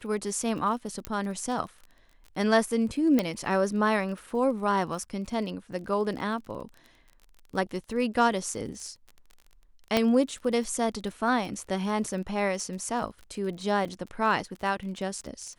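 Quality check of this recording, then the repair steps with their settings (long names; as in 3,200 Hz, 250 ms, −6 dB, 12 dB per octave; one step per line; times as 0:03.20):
surface crackle 27 per second −37 dBFS
0:01.05: click −16 dBFS
0:03.19: click −11 dBFS
0:09.97: click −9 dBFS
0:13.85: drop-out 4.4 ms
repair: click removal
repair the gap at 0:13.85, 4.4 ms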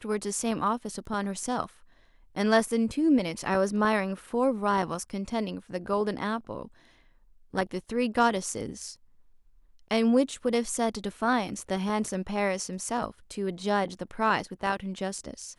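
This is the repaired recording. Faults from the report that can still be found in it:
0:01.05: click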